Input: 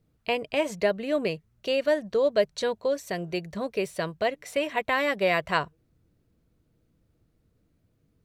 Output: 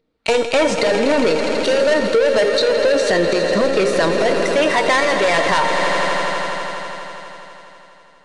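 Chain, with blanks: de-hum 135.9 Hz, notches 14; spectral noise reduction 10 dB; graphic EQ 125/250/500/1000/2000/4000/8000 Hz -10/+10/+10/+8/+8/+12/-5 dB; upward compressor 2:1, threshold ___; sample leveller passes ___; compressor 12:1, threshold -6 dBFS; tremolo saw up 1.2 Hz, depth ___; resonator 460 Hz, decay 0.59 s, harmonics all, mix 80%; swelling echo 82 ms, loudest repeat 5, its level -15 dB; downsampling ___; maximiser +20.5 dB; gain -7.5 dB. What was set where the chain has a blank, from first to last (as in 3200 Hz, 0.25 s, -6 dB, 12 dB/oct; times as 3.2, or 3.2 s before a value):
-30 dBFS, 5, 60%, 22050 Hz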